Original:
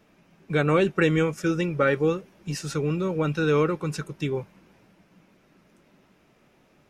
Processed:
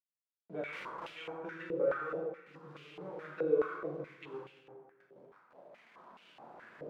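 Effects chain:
adaptive Wiener filter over 41 samples
camcorder AGC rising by 7.3 dB per second
0:03.42–0:03.98: comb filter 2.7 ms, depth 46%
downward compressor 6 to 1, threshold −28 dBFS, peak gain reduction 11 dB
centre clipping without the shift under −43 dBFS
flanger 0.84 Hz, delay 1.8 ms, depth 8.5 ms, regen +38%
0:00.71–0:01.15: comparator with hysteresis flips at −31 dBFS
convolution reverb RT60 1.7 s, pre-delay 8 ms, DRR −3.5 dB
band-pass on a step sequencer 4.7 Hz 490–2,800 Hz
level +4 dB

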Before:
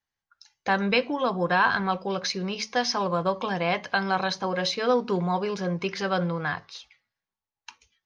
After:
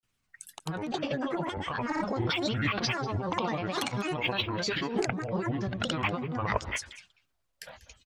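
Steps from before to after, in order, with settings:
low-shelf EQ 120 Hz +10 dB
compressor whose output falls as the input rises −33 dBFS, ratio −1
granular cloud 100 ms, grains 20 per second, pitch spread up and down by 12 semitones
single-tap delay 192 ms −17.5 dB
level +2.5 dB

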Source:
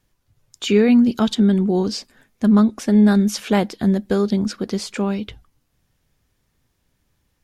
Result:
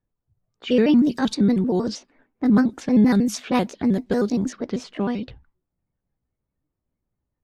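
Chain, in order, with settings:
pitch shifter gated in a rhythm +3.5 semitones, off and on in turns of 78 ms
low-pass that shuts in the quiet parts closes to 1,000 Hz, open at −14.5 dBFS
noise reduction from a noise print of the clip's start 9 dB
level −2.5 dB

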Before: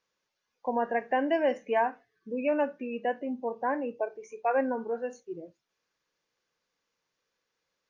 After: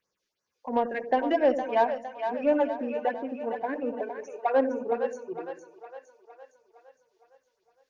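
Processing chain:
all-pass phaser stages 4, 2.9 Hz, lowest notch 120–3,400 Hz
harmonic generator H 7 −29 dB, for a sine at −15.5 dBFS
echo with a time of its own for lows and highs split 540 Hz, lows 90 ms, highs 461 ms, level −7.5 dB
level +4 dB

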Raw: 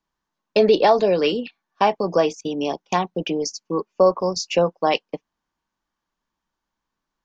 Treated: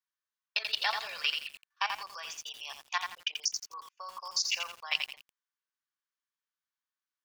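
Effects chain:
high-pass filter 1,300 Hz 24 dB per octave
output level in coarse steps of 14 dB
feedback echo at a low word length 85 ms, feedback 35%, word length 8 bits, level −5 dB

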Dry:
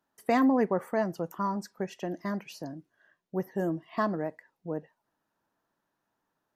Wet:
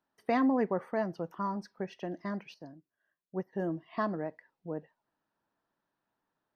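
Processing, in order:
Savitzky-Golay smoothing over 15 samples
0:02.54–0:03.53: expander for the loud parts 1.5 to 1, over −50 dBFS
level −3.5 dB

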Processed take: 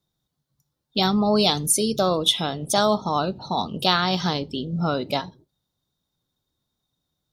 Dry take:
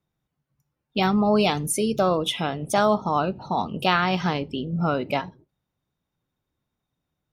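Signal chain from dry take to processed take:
high shelf with overshoot 3,100 Hz +6 dB, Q 3

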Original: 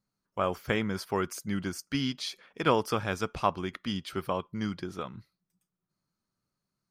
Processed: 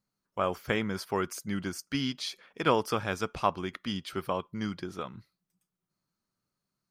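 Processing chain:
low-shelf EQ 170 Hz −3 dB

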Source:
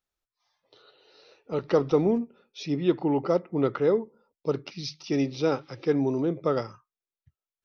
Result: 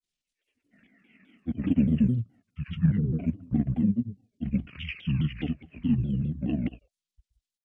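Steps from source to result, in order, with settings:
granular cloud 100 ms, grains 20 per second, spray 100 ms, pitch spread up and down by 0 semitones
pitch shifter −12 semitones
drawn EQ curve 280 Hz 0 dB, 940 Hz −16 dB, 3,600 Hz +9 dB
pitch modulation by a square or saw wave saw down 4.8 Hz, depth 250 cents

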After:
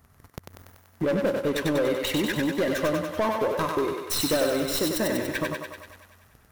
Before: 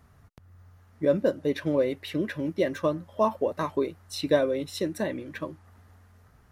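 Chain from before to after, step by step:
stylus tracing distortion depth 0.075 ms
high-shelf EQ 8,800 Hz +10.5 dB
leveller curve on the samples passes 3
downward compressor 2.5 to 1, threshold −34 dBFS, peak gain reduction 13.5 dB
on a send: feedback echo with a high-pass in the loop 96 ms, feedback 67%, high-pass 350 Hz, level −3 dB
on the sum: level +4 dB

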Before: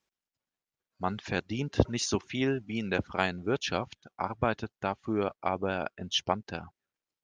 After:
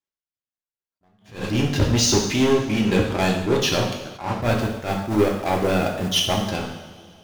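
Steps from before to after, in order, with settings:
dynamic equaliser 1,500 Hz, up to −8 dB, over −45 dBFS, Q 1
leveller curve on the samples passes 5
0:04.42–0:06.48: bit-depth reduction 6 bits, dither none
coupled-rooms reverb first 0.87 s, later 3.1 s, from −18 dB, DRR −1 dB
level that may rise only so fast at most 150 dB per second
level −5.5 dB

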